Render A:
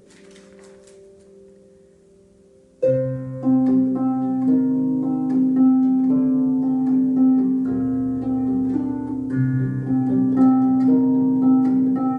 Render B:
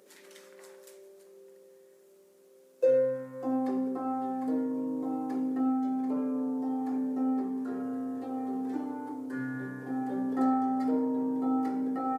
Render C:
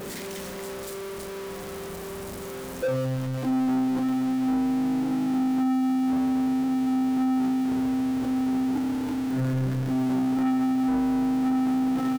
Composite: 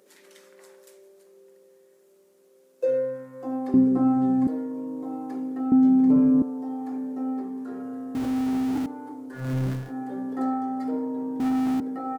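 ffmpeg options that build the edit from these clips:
-filter_complex "[0:a]asplit=2[s0][s1];[2:a]asplit=3[s2][s3][s4];[1:a]asplit=6[s5][s6][s7][s8][s9][s10];[s5]atrim=end=3.742[s11];[s0]atrim=start=3.738:end=4.472[s12];[s6]atrim=start=4.468:end=5.722[s13];[s1]atrim=start=5.718:end=6.422[s14];[s7]atrim=start=6.418:end=8.152[s15];[s2]atrim=start=8.148:end=8.862[s16];[s8]atrim=start=8.858:end=9.54[s17];[s3]atrim=start=9.3:end=9.94[s18];[s9]atrim=start=9.7:end=11.402[s19];[s4]atrim=start=11.398:end=11.802[s20];[s10]atrim=start=11.798[s21];[s11][s12]acrossfade=d=0.004:c1=hsin:c2=hsin[s22];[s22][s13]acrossfade=d=0.004:c1=hsin:c2=hsin[s23];[s23][s14]acrossfade=d=0.004:c1=hsin:c2=hsin[s24];[s24][s15]acrossfade=d=0.004:c1=hsin:c2=hsin[s25];[s25][s16]acrossfade=d=0.004:c1=hsin:c2=hsin[s26];[s26][s17]acrossfade=d=0.004:c1=hsin:c2=hsin[s27];[s27][s18]acrossfade=d=0.24:c1=tri:c2=tri[s28];[s28][s19]acrossfade=d=0.24:c1=tri:c2=tri[s29];[s29][s20]acrossfade=d=0.004:c1=hsin:c2=hsin[s30];[s30][s21]acrossfade=d=0.004:c1=hsin:c2=hsin"

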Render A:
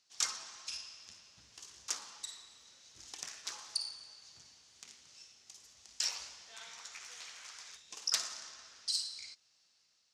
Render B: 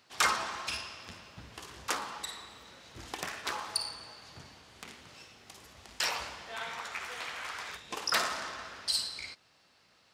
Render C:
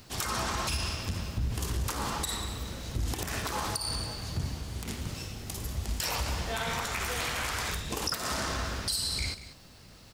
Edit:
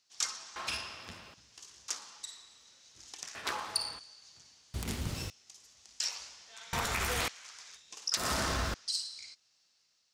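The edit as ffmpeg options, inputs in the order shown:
-filter_complex "[1:a]asplit=2[s0][s1];[2:a]asplit=3[s2][s3][s4];[0:a]asplit=6[s5][s6][s7][s8][s9][s10];[s5]atrim=end=0.562[s11];[s0]atrim=start=0.558:end=1.342[s12];[s6]atrim=start=1.338:end=3.352[s13];[s1]atrim=start=3.348:end=3.992[s14];[s7]atrim=start=3.988:end=4.742[s15];[s2]atrim=start=4.738:end=5.302[s16];[s8]atrim=start=5.298:end=6.732[s17];[s3]atrim=start=6.728:end=7.282[s18];[s9]atrim=start=7.278:end=8.172[s19];[s4]atrim=start=8.168:end=8.742[s20];[s10]atrim=start=8.738[s21];[s11][s12]acrossfade=d=0.004:c1=hsin:c2=hsin[s22];[s22][s13]acrossfade=d=0.004:c1=hsin:c2=hsin[s23];[s23][s14]acrossfade=d=0.004:c1=hsin:c2=hsin[s24];[s24][s15]acrossfade=d=0.004:c1=hsin:c2=hsin[s25];[s25][s16]acrossfade=d=0.004:c1=hsin:c2=hsin[s26];[s26][s17]acrossfade=d=0.004:c1=hsin:c2=hsin[s27];[s27][s18]acrossfade=d=0.004:c1=hsin:c2=hsin[s28];[s28][s19]acrossfade=d=0.004:c1=hsin:c2=hsin[s29];[s29][s20]acrossfade=d=0.004:c1=hsin:c2=hsin[s30];[s30][s21]acrossfade=d=0.004:c1=hsin:c2=hsin"

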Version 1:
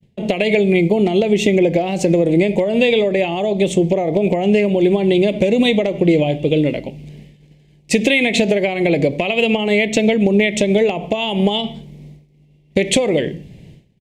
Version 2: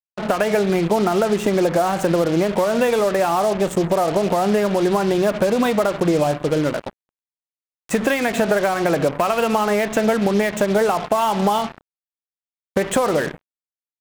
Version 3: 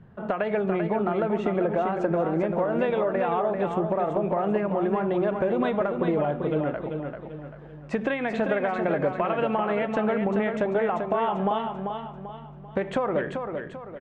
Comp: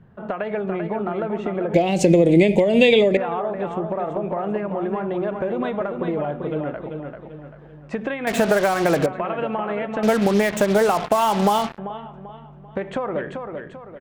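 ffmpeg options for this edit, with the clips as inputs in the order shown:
-filter_complex "[1:a]asplit=2[s0][s1];[2:a]asplit=4[s2][s3][s4][s5];[s2]atrim=end=1.742[s6];[0:a]atrim=start=1.738:end=3.172[s7];[s3]atrim=start=3.168:end=8.272[s8];[s0]atrim=start=8.268:end=9.062[s9];[s4]atrim=start=9.058:end=10.032[s10];[s1]atrim=start=10.028:end=11.782[s11];[s5]atrim=start=11.778[s12];[s6][s7]acrossfade=d=0.004:c1=hsin:c2=hsin[s13];[s13][s8]acrossfade=d=0.004:c1=hsin:c2=hsin[s14];[s14][s9]acrossfade=d=0.004:c1=hsin:c2=hsin[s15];[s15][s10]acrossfade=d=0.004:c1=hsin:c2=hsin[s16];[s16][s11]acrossfade=d=0.004:c1=hsin:c2=hsin[s17];[s17][s12]acrossfade=d=0.004:c1=hsin:c2=hsin"

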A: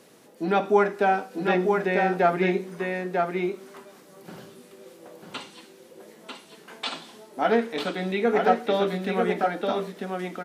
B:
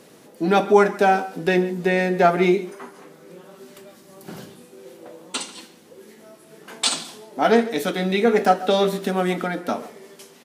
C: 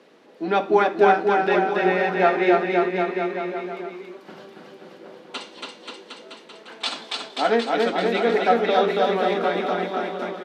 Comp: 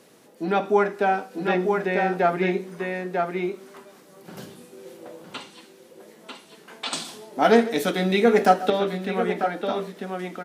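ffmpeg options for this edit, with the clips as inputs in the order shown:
-filter_complex "[1:a]asplit=2[s0][s1];[0:a]asplit=3[s2][s3][s4];[s2]atrim=end=4.372[s5];[s0]atrim=start=4.368:end=5.242[s6];[s3]atrim=start=5.238:end=6.932[s7];[s1]atrim=start=6.928:end=8.702[s8];[s4]atrim=start=8.698[s9];[s5][s6]acrossfade=d=0.004:c1=hsin:c2=hsin[s10];[s10][s7]acrossfade=d=0.004:c1=hsin:c2=hsin[s11];[s11][s8]acrossfade=d=0.004:c1=hsin:c2=hsin[s12];[s12][s9]acrossfade=d=0.004:c1=hsin:c2=hsin"

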